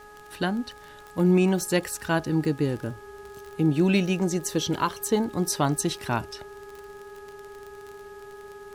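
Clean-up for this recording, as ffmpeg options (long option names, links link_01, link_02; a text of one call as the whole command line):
ffmpeg -i in.wav -af "adeclick=threshold=4,bandreject=frequency=418.1:width_type=h:width=4,bandreject=frequency=836.2:width_type=h:width=4,bandreject=frequency=1254.3:width_type=h:width=4,bandreject=frequency=1672.4:width_type=h:width=4,bandreject=frequency=400:width=30,agate=range=-21dB:threshold=-37dB" out.wav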